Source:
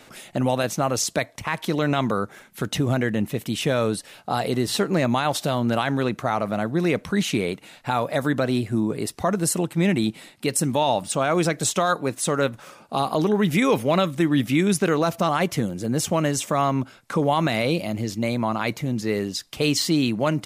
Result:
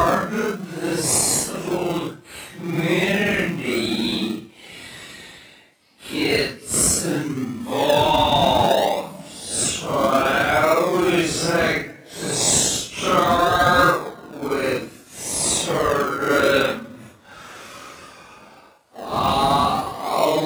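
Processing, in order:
meter weighting curve A
extreme stretch with random phases 5.2×, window 0.05 s, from 0:09.26
in parallel at −6.5 dB: sample-and-hold swept by an LFO 40×, swing 60% 0.63 Hz
on the sum: high-pass filter 68 Hz
level +4 dB

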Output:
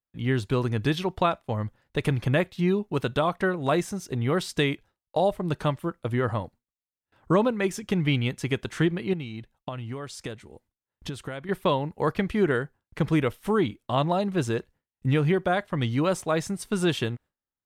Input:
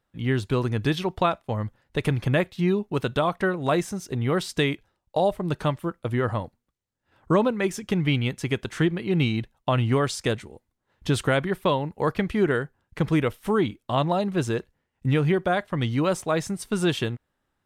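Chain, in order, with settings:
noise gate with hold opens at −55 dBFS
0:09.13–0:11.49: downward compressor 5 to 1, threshold −32 dBFS, peak gain reduction 13.5 dB
level −1 dB

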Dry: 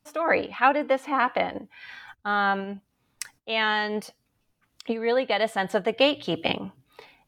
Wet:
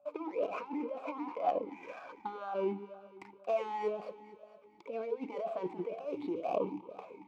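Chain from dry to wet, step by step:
running median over 15 samples
compressor whose output falls as the input rises −33 dBFS, ratio −1
steady tone 580 Hz −60 dBFS
delay that swaps between a low-pass and a high-pass 114 ms, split 830 Hz, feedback 74%, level −11.5 dB
formant filter swept between two vowels a-u 2 Hz
level +6.5 dB

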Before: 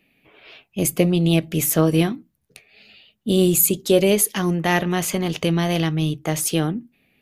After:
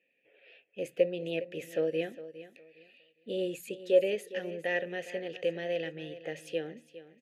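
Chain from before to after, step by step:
formant filter e
notch filter 610 Hz, Q 12
repeating echo 409 ms, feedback 24%, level −15 dB
level −1 dB

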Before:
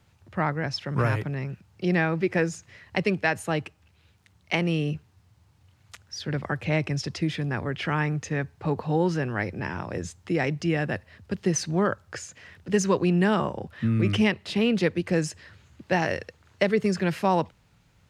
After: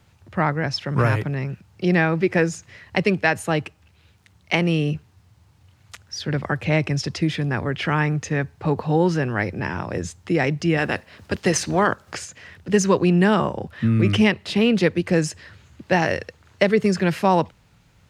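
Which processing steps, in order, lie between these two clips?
0:10.77–0:12.24: ceiling on every frequency bin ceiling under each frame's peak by 14 dB
level +5 dB

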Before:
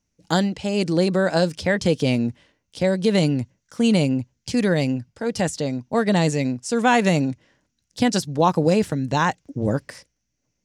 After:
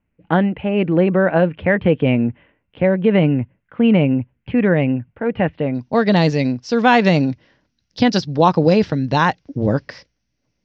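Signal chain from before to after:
Butterworth low-pass 2,800 Hz 48 dB per octave, from 0:05.74 5,400 Hz
level +4.5 dB

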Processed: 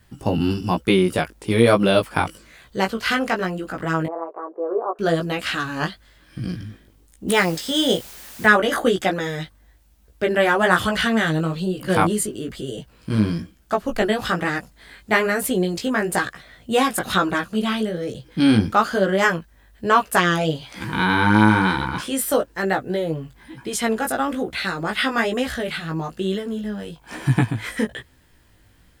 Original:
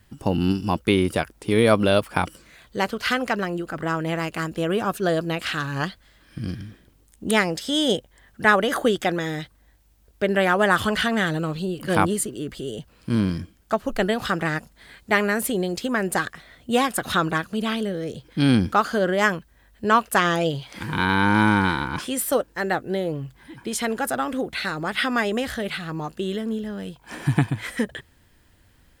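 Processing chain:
0:04.06–0:04.99: elliptic band-pass filter 380–1,100 Hz, stop band 60 dB
chorus effect 1.1 Hz, delay 15.5 ms, depth 3.5 ms
0:07.28–0:08.46: background noise white −46 dBFS
level +5 dB

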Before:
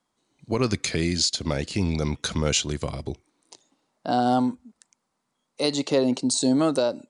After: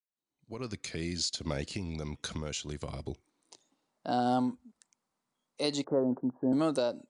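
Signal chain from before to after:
fade in at the beginning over 1.68 s
0:01.66–0:02.89: downward compressor 6 to 1, threshold −26 dBFS, peak gain reduction 8 dB
0:05.84–0:06.53: Butterworth low-pass 1,600 Hz 72 dB per octave
level −7 dB

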